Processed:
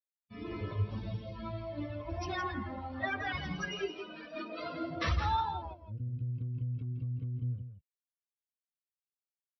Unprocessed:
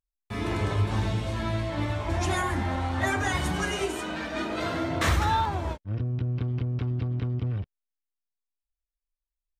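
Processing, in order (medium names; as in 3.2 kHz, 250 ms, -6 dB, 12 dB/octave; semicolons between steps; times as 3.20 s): expander on every frequency bin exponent 2; brick-wall FIR low-pass 5.9 kHz; delay 166 ms -9 dB; trim -4 dB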